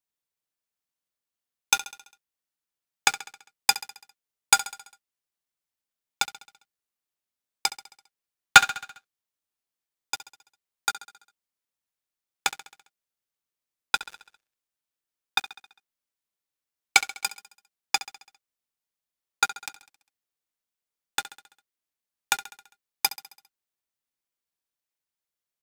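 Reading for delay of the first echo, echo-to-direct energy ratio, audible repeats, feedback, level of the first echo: 67 ms, -14.0 dB, 4, 57%, -15.5 dB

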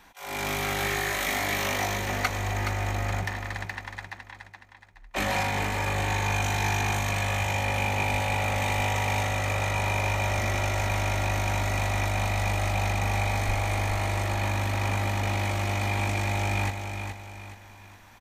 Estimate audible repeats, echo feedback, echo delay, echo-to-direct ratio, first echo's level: 4, 39%, 0.421 s, -6.5 dB, -7.0 dB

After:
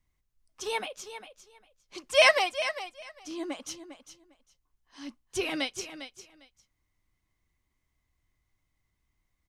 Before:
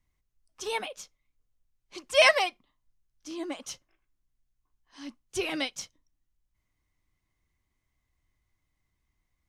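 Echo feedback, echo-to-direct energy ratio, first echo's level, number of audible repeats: 17%, -11.5 dB, -11.5 dB, 2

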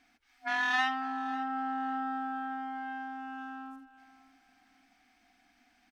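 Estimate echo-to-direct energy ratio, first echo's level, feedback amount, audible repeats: -17.5 dB, -18.0 dB, 31%, 2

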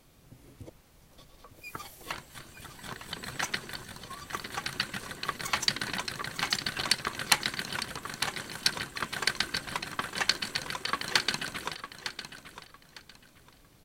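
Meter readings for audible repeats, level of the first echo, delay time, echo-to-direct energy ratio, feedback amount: 2, -11.0 dB, 0.905 s, -10.5 dB, 24%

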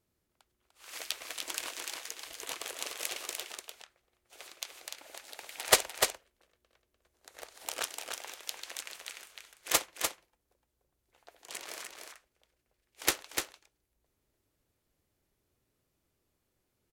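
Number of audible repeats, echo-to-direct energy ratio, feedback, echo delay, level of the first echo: 1, -5.0 dB, no steady repeat, 0.297 s, -5.0 dB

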